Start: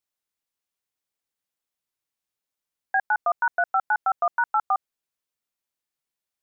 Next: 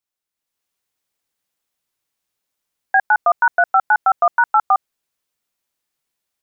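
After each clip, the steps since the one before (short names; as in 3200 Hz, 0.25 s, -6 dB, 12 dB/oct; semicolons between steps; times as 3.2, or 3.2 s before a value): AGC gain up to 8.5 dB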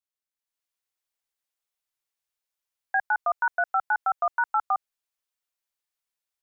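bell 190 Hz -13.5 dB 1.7 oct; gain -9 dB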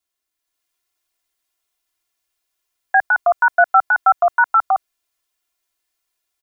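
comb 2.9 ms, depth 89%; gain +8.5 dB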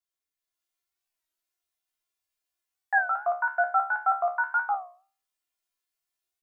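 resonator 71 Hz, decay 0.39 s, harmonics all, mix 90%; record warp 33 1/3 rpm, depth 160 cents; gain -2 dB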